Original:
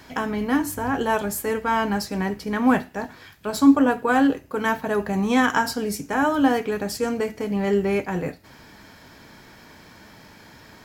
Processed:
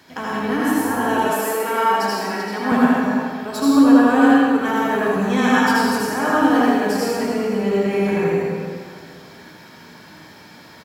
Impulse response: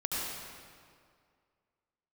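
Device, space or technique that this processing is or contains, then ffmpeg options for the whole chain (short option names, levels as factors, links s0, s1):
PA in a hall: -filter_complex "[0:a]highpass=120,equalizer=f=3800:t=o:w=0.47:g=3,aecho=1:1:83:0.447[s0];[1:a]atrim=start_sample=2205[s1];[s0][s1]afir=irnorm=-1:irlink=0,asettb=1/sr,asplit=3[s2][s3][s4];[s2]atrim=end=1.344[s5];[s3]atrim=start=1.34:end=2.72,asetpts=PTS-STARTPTS,afade=t=in:d=0.004:c=qsin,afade=t=out:st=1.376:d=0.004:c=qsin,highpass=290[s6];[s4]atrim=start=2.716[s7];[s5][s6]acrossfade=d=0.004:c1=hsin:c2=qsin[s8];[s8][s7]acrossfade=d=0.004:c1=qsin:c2=hsin,volume=0.75"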